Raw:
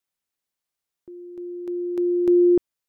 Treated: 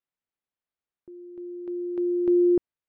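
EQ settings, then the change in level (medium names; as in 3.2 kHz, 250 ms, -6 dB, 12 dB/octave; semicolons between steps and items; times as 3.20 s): distance through air 310 m; -3.0 dB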